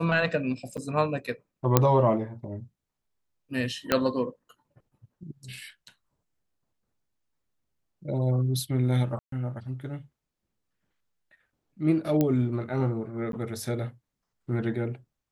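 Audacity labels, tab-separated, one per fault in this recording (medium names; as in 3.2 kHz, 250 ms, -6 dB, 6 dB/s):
0.770000	0.780000	dropout 7.6 ms
1.770000	1.770000	pop -3 dBFS
3.920000	3.920000	pop -7 dBFS
9.190000	9.320000	dropout 133 ms
12.210000	12.210000	pop -12 dBFS
13.320000	13.330000	dropout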